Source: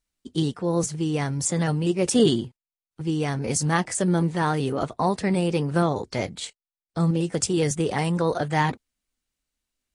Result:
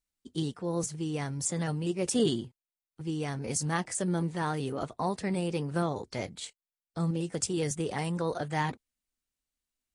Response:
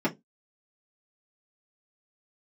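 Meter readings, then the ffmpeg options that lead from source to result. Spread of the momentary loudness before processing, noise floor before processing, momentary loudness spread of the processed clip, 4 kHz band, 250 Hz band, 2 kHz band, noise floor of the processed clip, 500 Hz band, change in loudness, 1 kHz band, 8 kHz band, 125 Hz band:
8 LU, under -85 dBFS, 8 LU, -7.0 dB, -8.0 dB, -8.0 dB, under -85 dBFS, -8.0 dB, -7.5 dB, -8.0 dB, -6.0 dB, -8.0 dB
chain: -af "highshelf=f=7600:g=4.5,volume=0.398"

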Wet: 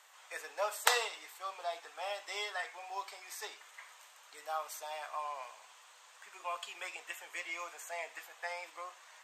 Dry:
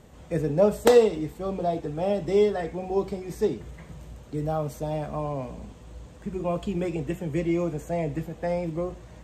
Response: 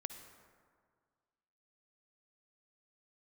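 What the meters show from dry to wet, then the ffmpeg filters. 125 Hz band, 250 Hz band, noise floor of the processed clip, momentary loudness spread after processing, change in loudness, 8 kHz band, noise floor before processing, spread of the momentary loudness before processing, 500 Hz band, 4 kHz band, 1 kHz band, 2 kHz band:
under -40 dB, under -35 dB, -60 dBFS, 18 LU, -13.0 dB, +1.5 dB, -48 dBFS, 18 LU, -20.5 dB, +1.5 dB, -5.5 dB, +1.5 dB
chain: -af "highpass=f=990:w=0.5412,highpass=f=990:w=1.3066,volume=1.19"

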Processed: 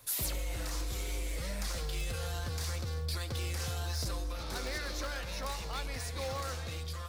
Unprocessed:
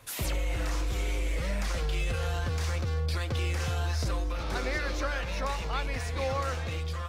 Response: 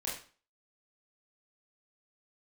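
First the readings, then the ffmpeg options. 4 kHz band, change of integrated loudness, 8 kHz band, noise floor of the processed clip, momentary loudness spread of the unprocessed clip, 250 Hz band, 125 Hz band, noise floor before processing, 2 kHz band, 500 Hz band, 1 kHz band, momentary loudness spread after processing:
-1.5 dB, -5.5 dB, +1.5 dB, -40 dBFS, 2 LU, -6.5 dB, -6.5 dB, -34 dBFS, -7.0 dB, -6.5 dB, -7.0 dB, 3 LU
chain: -filter_complex "[0:a]aeval=exprs='0.0668*(abs(mod(val(0)/0.0668+3,4)-2)-1)':c=same,aexciter=amount=2.3:drive=5.9:freq=3800,asplit=2[s0][s1];[1:a]atrim=start_sample=2205,adelay=121[s2];[s1][s2]afir=irnorm=-1:irlink=0,volume=0.106[s3];[s0][s3]amix=inputs=2:normalize=0,volume=0.473"

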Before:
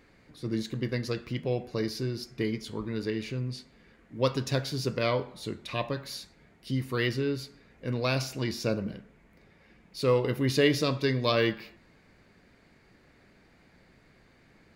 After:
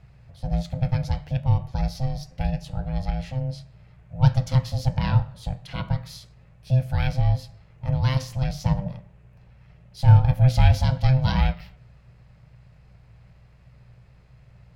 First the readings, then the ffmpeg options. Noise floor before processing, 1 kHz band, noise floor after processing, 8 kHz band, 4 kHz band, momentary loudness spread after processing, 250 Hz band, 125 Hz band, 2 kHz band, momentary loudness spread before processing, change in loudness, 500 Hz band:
-61 dBFS, +5.0 dB, -53 dBFS, no reading, -3.0 dB, 15 LU, +1.0 dB, +13.0 dB, -2.5 dB, 14 LU, +6.5 dB, -7.5 dB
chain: -af "aeval=exprs='val(0)*sin(2*PI*390*n/s)':c=same,aeval=exprs='val(0)+0.000447*(sin(2*PI*60*n/s)+sin(2*PI*2*60*n/s)/2+sin(2*PI*3*60*n/s)/3+sin(2*PI*4*60*n/s)/4+sin(2*PI*5*60*n/s)/5)':c=same,lowshelf=f=190:t=q:w=3:g=12.5"

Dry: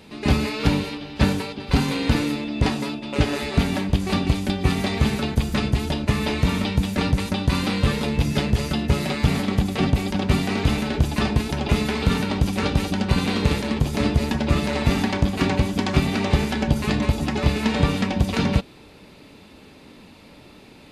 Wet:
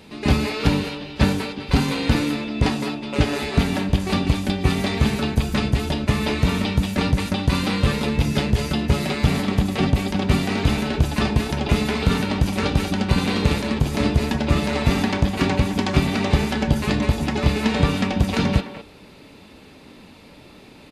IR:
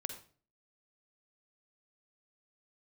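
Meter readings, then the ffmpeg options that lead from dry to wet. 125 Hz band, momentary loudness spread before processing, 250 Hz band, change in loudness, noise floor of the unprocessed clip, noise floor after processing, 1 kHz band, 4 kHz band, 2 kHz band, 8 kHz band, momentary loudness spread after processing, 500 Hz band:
+1.0 dB, 2 LU, +1.0 dB, +1.0 dB, -47 dBFS, -46 dBFS, +1.5 dB, +1.0 dB, +1.5 dB, +1.0 dB, 2 LU, +1.5 dB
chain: -filter_complex "[0:a]asplit=2[s0][s1];[s1]adelay=210,highpass=300,lowpass=3400,asoftclip=type=hard:threshold=0.158,volume=0.316[s2];[s0][s2]amix=inputs=2:normalize=0,volume=1.12"

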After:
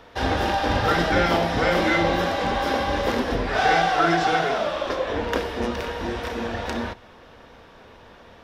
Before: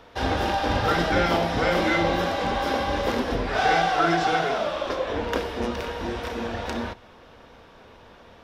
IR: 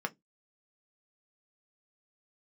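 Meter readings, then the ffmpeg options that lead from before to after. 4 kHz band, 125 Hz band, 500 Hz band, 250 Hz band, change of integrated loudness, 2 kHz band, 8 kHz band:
+1.5 dB, +1.5 dB, +1.5 dB, +1.5 dB, +1.5 dB, +2.5 dB, +1.5 dB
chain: -af "equalizer=f=1800:w=7.5:g=3,volume=1.19"

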